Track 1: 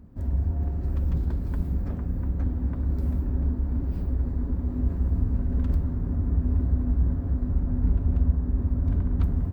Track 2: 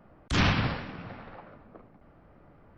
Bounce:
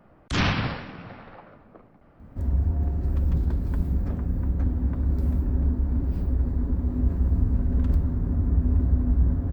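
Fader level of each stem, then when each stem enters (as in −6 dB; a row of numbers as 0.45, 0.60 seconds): +2.0, +1.0 decibels; 2.20, 0.00 seconds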